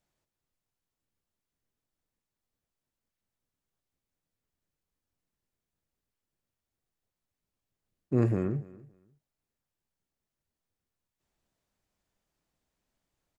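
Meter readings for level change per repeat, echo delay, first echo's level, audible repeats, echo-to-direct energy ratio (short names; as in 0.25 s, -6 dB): -14.0 dB, 0.284 s, -21.0 dB, 2, -21.0 dB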